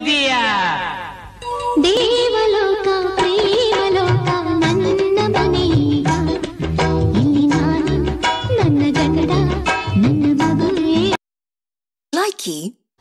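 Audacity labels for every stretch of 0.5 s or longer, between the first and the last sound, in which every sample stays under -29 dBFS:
11.150000	12.130000	silence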